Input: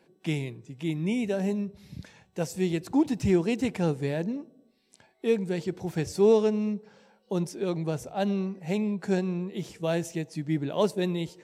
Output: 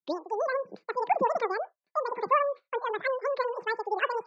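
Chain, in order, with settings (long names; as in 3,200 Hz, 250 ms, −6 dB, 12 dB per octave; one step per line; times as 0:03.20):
turntable start at the beginning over 0.40 s
hum removal 181.4 Hz, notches 7
downward expander −45 dBFS
gate on every frequency bin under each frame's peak −25 dB strong
change of speed 2.68×
loudspeaker in its box 110–4,100 Hz, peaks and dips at 180 Hz +5 dB, 260 Hz −9 dB, 1,300 Hz −5 dB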